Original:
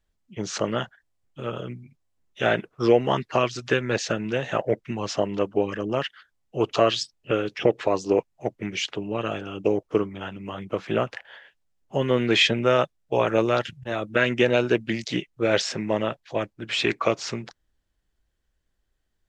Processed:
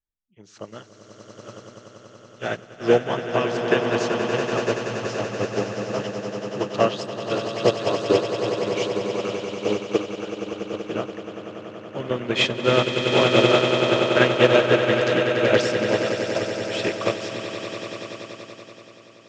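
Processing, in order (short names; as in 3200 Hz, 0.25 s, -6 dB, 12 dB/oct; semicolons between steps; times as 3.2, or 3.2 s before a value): swelling echo 95 ms, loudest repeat 8, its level -7 dB; upward expander 2.5:1, over -28 dBFS; gain +3 dB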